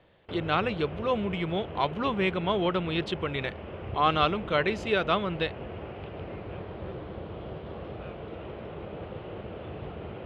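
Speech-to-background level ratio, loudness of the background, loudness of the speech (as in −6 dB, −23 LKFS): 11.5 dB, −40.0 LKFS, −28.5 LKFS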